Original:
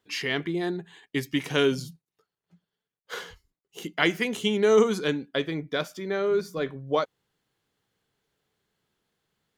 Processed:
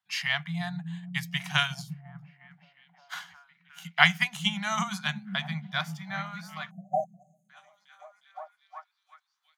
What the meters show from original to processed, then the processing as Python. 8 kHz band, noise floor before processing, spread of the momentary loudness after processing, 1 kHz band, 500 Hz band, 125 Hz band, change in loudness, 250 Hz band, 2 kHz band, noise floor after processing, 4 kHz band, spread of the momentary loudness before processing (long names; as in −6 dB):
−1.0 dB, below −85 dBFS, 22 LU, +2.0 dB, −16.0 dB, +1.0 dB, −3.0 dB, −7.5 dB, +3.0 dB, −78 dBFS, +2.0 dB, 17 LU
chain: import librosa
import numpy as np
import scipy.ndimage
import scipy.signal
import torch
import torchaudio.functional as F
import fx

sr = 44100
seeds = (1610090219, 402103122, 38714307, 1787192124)

y = fx.filter_sweep_highpass(x, sr, from_hz=210.0, to_hz=1100.0, start_s=6.47, end_s=7.28, q=3.4)
y = fx.echo_stepped(y, sr, ms=358, hz=150.0, octaves=0.7, feedback_pct=70, wet_db=-2.0)
y = fx.spec_erase(y, sr, start_s=6.7, length_s=0.79, low_hz=780.0, high_hz=6200.0)
y = scipy.signal.sosfilt(scipy.signal.cheby1(4, 1.0, [170.0, 720.0], 'bandstop', fs=sr, output='sos'), y)
y = fx.upward_expand(y, sr, threshold_db=-50.0, expansion=1.5)
y = y * librosa.db_to_amplitude(6.0)